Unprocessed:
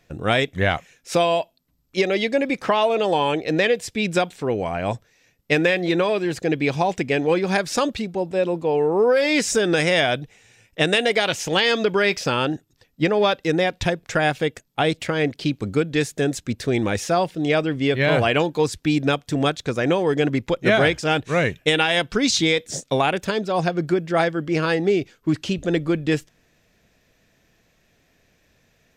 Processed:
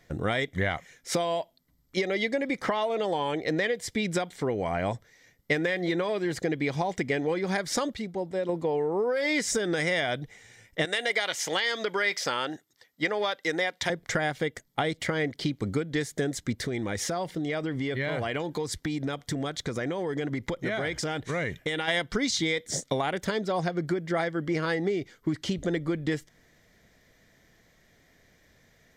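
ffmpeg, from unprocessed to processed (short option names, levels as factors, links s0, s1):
-filter_complex "[0:a]asettb=1/sr,asplit=3[s0][s1][s2];[s0]atrim=end=10.854[s3];[s1]atrim=start=10.85:end=13.9,asetpts=PTS-STARTPTS,afade=t=in:d=0.004:c=qsin,afade=t=out:st=3.046:d=0.004:c=qsin,highpass=f=800:p=1[s4];[s2]atrim=start=13.896[s5];[s3][s4]acrossfade=d=0.004:c1=hsin:c2=qsin[s6];[s6][s5]acrossfade=d=0.004:c1=qsin:c2=hsin,asplit=3[s7][s8][s9];[s7]afade=t=out:st=16.64:d=0.02[s10];[s8]acompressor=threshold=0.0501:ratio=6:attack=3.2:release=140:knee=1:detection=peak,afade=t=in:st=16.64:d=0.02,afade=t=out:st=21.87:d=0.02[s11];[s9]afade=t=in:st=21.87:d=0.02[s12];[s10][s11][s12]amix=inputs=3:normalize=0,asplit=3[s13][s14][s15];[s13]atrim=end=7.942[s16];[s14]atrim=start=7.938:end=8.492,asetpts=PTS-STARTPTS,volume=0.473[s17];[s15]atrim=start=8.488[s18];[s16][s17]acrossfade=d=0.004:c1=hsin:c2=hsin[s19];[s19][s18]acrossfade=d=0.004:c1=hsin:c2=hsin,bandreject=f=2600:w=5.3,acompressor=threshold=0.0562:ratio=6,equalizer=f=2000:w=5.9:g=7"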